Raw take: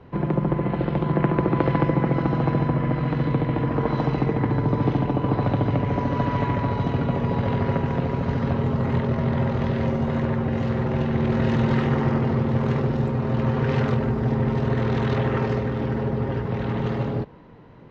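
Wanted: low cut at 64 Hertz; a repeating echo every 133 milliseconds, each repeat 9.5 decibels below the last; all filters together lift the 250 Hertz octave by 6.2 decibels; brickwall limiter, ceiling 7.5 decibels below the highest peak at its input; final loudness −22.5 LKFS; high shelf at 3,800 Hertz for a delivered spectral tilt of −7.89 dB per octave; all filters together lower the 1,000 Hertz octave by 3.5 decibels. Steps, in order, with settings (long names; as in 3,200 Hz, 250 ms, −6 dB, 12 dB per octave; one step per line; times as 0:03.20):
high-pass filter 64 Hz
parametric band 250 Hz +8 dB
parametric band 1,000 Hz −4.5 dB
high-shelf EQ 3,800 Hz −3 dB
brickwall limiter −10.5 dBFS
repeating echo 133 ms, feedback 33%, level −9.5 dB
level −2 dB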